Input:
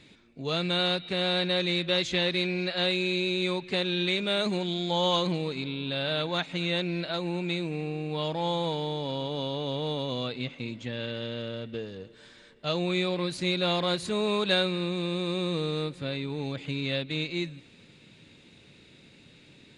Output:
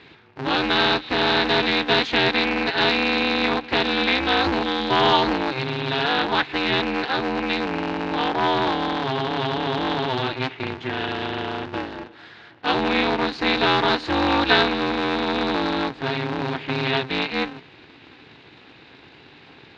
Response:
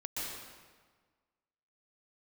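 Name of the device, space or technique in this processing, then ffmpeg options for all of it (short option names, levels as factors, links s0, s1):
ring modulator pedal into a guitar cabinet: -af "aeval=exprs='val(0)*sgn(sin(2*PI*130*n/s))':c=same,highpass=110,equalizer=f=130:t=q:w=4:g=3,equalizer=f=200:t=q:w=4:g=-5,equalizer=f=570:t=q:w=4:g=-7,equalizer=f=880:t=q:w=4:g=5,equalizer=f=1600:t=q:w=4:g=5,equalizer=f=3500:t=q:w=4:g=-3,lowpass=f=4300:w=0.5412,lowpass=f=4300:w=1.3066,volume=2.66"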